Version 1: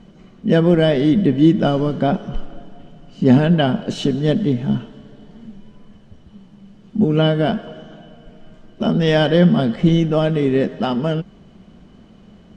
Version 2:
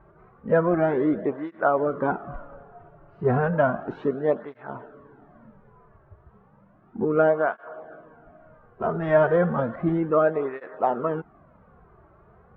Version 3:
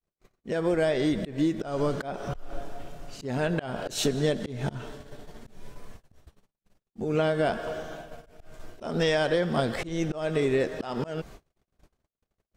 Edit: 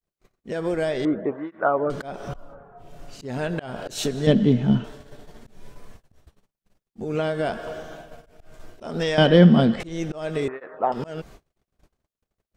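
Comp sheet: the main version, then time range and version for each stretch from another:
3
1.05–1.90 s: from 2
2.44–2.88 s: from 2, crossfade 0.24 s
4.27–4.84 s: from 1
9.18–9.80 s: from 1
10.48–10.92 s: from 2

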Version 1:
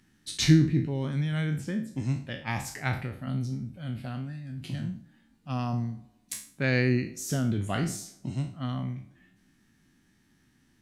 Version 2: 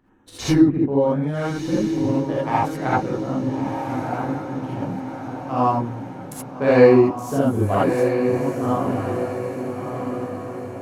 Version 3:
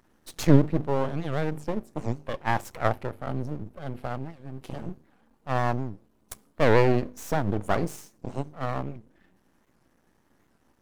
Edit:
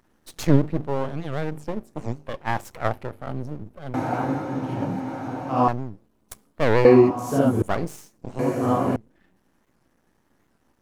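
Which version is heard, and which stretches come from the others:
3
3.94–5.68 s: from 2
6.85–7.62 s: from 2
8.39–8.96 s: from 2
not used: 1

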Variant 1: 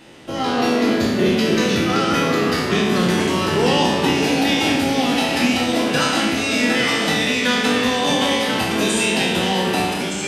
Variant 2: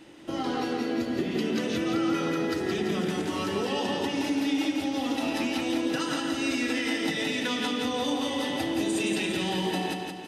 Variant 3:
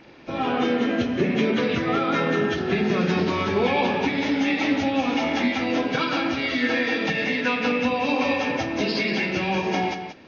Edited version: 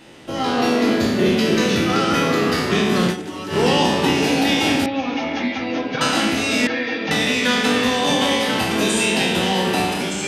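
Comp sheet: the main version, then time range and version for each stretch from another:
1
3.12–3.53 s: from 2, crossfade 0.10 s
4.86–6.01 s: from 3
6.67–7.11 s: from 3

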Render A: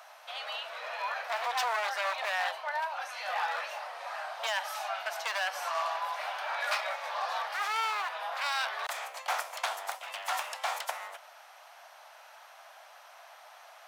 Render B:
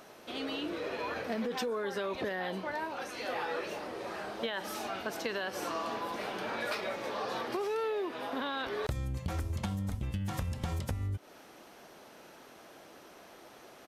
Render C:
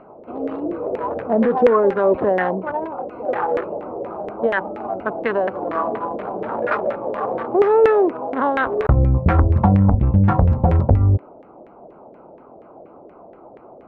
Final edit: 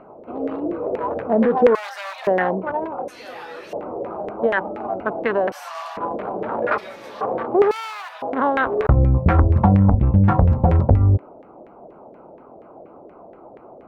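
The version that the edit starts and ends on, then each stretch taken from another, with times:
C
1.75–2.27 s: from A
3.08–3.73 s: from B
5.52–5.97 s: from A
6.78–7.21 s: from B
7.71–8.22 s: from A

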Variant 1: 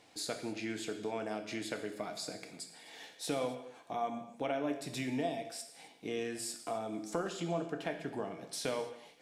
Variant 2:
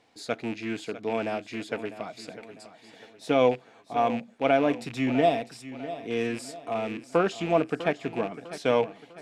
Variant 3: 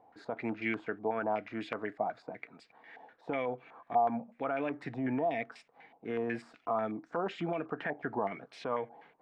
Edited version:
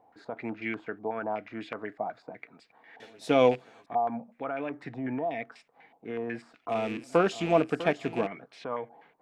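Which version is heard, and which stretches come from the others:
3
3.00–3.86 s: from 2
6.69–8.27 s: from 2
not used: 1

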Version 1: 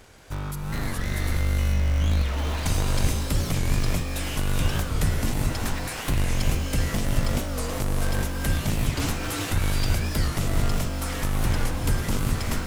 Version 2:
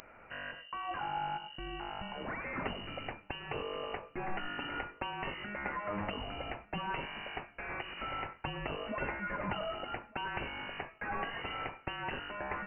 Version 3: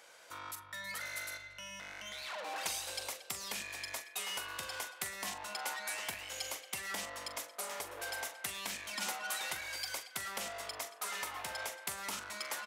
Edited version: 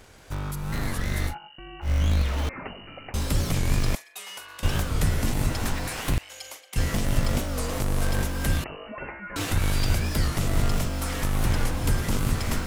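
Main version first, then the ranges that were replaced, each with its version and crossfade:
1
1.30–1.86 s: from 2, crossfade 0.10 s
2.49–3.14 s: from 2
3.95–4.63 s: from 3
6.18–6.76 s: from 3
8.64–9.36 s: from 2

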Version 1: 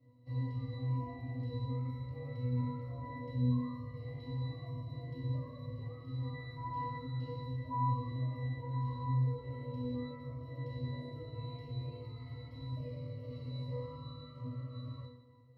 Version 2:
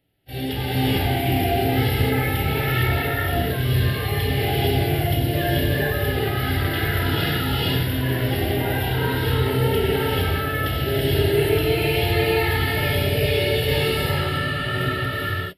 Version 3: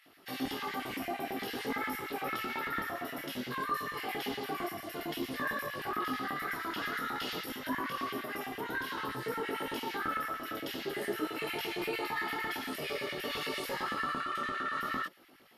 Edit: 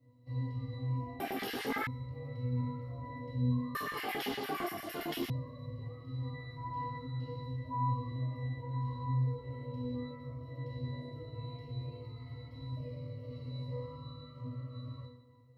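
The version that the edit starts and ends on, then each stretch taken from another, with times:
1
1.20–1.87 s: from 3
3.75–5.30 s: from 3
not used: 2

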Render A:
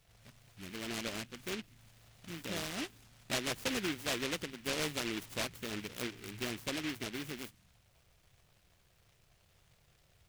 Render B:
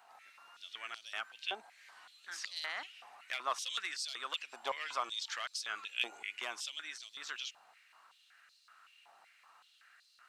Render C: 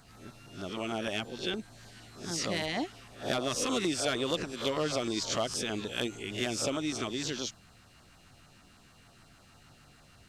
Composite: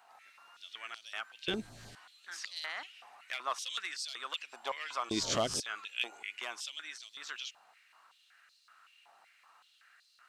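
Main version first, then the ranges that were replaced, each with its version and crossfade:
B
1.48–1.95 s: from C
5.11–5.60 s: from C
not used: A

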